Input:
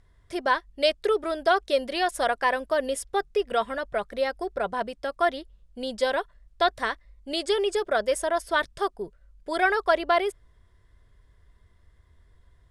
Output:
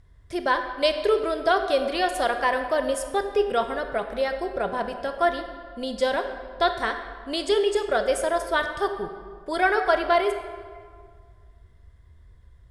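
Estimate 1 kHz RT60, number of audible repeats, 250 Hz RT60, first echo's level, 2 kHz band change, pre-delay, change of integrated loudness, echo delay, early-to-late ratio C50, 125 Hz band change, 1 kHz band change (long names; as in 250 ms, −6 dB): 1.9 s, no echo audible, 2.1 s, no echo audible, +1.0 dB, 17 ms, +1.5 dB, no echo audible, 8.0 dB, can't be measured, +1.5 dB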